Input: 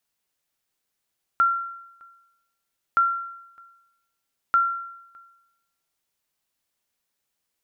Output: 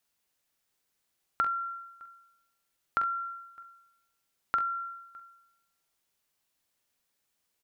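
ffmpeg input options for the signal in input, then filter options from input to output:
-f lavfi -i "aevalsrc='0.224*(sin(2*PI*1370*mod(t,1.57))*exp(-6.91*mod(t,1.57)/0.87)+0.0355*sin(2*PI*1370*max(mod(t,1.57)-0.61,0))*exp(-6.91*max(mod(t,1.57)-0.61,0)/0.87))':d=4.71:s=44100"
-filter_complex "[0:a]acompressor=threshold=0.0355:ratio=3,asplit=2[s0][s1];[s1]aecho=0:1:45|65:0.355|0.168[s2];[s0][s2]amix=inputs=2:normalize=0"

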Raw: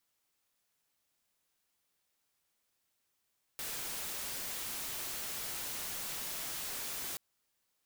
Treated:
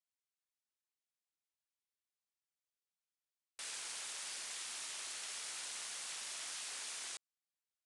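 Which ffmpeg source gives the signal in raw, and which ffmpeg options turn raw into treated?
-f lavfi -i "anoisesrc=c=white:a=0.0173:d=3.58:r=44100:seed=1"
-af "afwtdn=0.00398,highpass=f=1400:p=1,aresample=22050,aresample=44100"

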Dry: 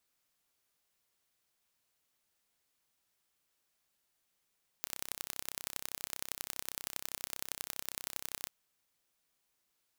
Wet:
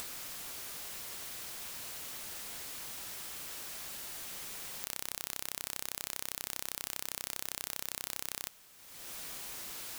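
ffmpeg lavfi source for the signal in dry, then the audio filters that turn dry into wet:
-f lavfi -i "aevalsrc='0.355*eq(mod(n,1357),0)*(0.5+0.5*eq(mod(n,4071),0))':d=3.65:s=44100"
-af "acompressor=mode=upward:threshold=0.00316:ratio=2.5,aeval=exprs='0.376*sin(PI/2*7.08*val(0)/0.376)':c=same"

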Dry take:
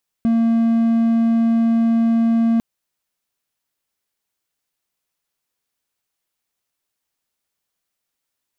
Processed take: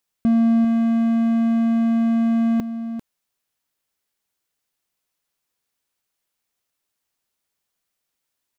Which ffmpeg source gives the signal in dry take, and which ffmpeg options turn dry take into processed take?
-f lavfi -i "aevalsrc='0.282*(1-4*abs(mod(229*t+0.25,1)-0.5))':d=2.35:s=44100"
-af "aecho=1:1:395:0.251"

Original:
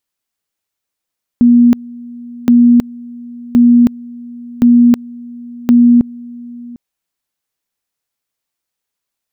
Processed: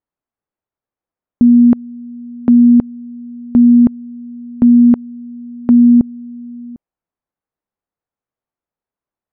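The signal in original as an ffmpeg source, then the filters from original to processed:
-f lavfi -i "aevalsrc='pow(10,(-3.5-23*gte(mod(t,1.07),0.32))/20)*sin(2*PI*240*t)':d=5.35:s=44100"
-af "lowpass=1100"

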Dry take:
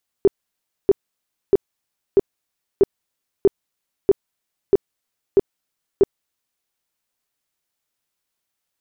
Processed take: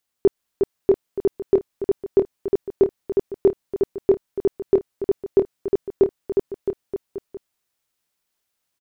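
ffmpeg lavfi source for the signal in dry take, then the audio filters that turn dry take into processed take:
-f lavfi -i "aevalsrc='0.398*sin(2*PI*395*mod(t,0.64))*lt(mod(t,0.64),10/395)':d=6.4:s=44100"
-af "aecho=1:1:360|666|926.1|1147|1335:0.631|0.398|0.251|0.158|0.1"

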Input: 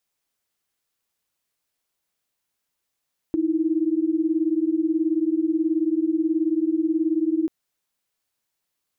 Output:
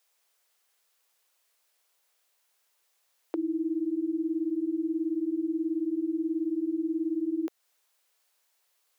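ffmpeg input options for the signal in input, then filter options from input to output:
-f lavfi -i "aevalsrc='0.0794*(sin(2*PI*311.13*t)+sin(2*PI*329.63*t))':d=4.14:s=44100"
-filter_complex "[0:a]highpass=f=430:w=0.5412,highpass=f=430:w=1.3066,asplit=2[s0][s1];[s1]acompressor=threshold=0.00891:ratio=6,volume=1.33[s2];[s0][s2]amix=inputs=2:normalize=0"

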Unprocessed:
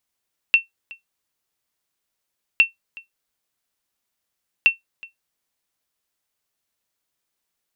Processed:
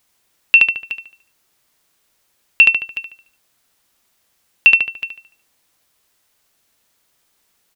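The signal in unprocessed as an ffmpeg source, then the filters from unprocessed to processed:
-f lavfi -i "aevalsrc='0.562*(sin(2*PI*2700*mod(t,2.06))*exp(-6.91*mod(t,2.06)/0.14)+0.0631*sin(2*PI*2700*max(mod(t,2.06)-0.37,0))*exp(-6.91*max(mod(t,2.06)-0.37,0)/0.14))':d=6.18:s=44100"
-filter_complex "[0:a]asplit=2[s0][s1];[s1]adelay=73,lowpass=f=4200:p=1,volume=0.398,asplit=2[s2][s3];[s3]adelay=73,lowpass=f=4200:p=1,volume=0.43,asplit=2[s4][s5];[s5]adelay=73,lowpass=f=4200:p=1,volume=0.43,asplit=2[s6][s7];[s7]adelay=73,lowpass=f=4200:p=1,volume=0.43,asplit=2[s8][s9];[s9]adelay=73,lowpass=f=4200:p=1,volume=0.43[s10];[s2][s4][s6][s8][s10]amix=inputs=5:normalize=0[s11];[s0][s11]amix=inputs=2:normalize=0,alimiter=level_in=5.62:limit=0.891:release=50:level=0:latency=1"

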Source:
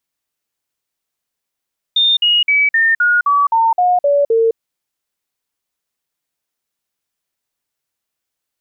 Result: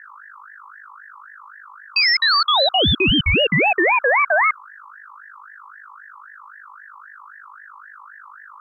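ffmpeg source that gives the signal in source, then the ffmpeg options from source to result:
-f lavfi -i "aevalsrc='0.335*clip(min(mod(t,0.26),0.21-mod(t,0.26))/0.005,0,1)*sin(2*PI*3630*pow(2,-floor(t/0.26)/3)*mod(t,0.26))':d=2.6:s=44100"
-af "aeval=exprs='val(0)+0.0126*(sin(2*PI*50*n/s)+sin(2*PI*2*50*n/s)/2+sin(2*PI*3*50*n/s)/3+sin(2*PI*4*50*n/s)/4+sin(2*PI*5*50*n/s)/5)':c=same,aeval=exprs='val(0)*sin(2*PI*1400*n/s+1400*0.25/3.8*sin(2*PI*3.8*n/s))':c=same"

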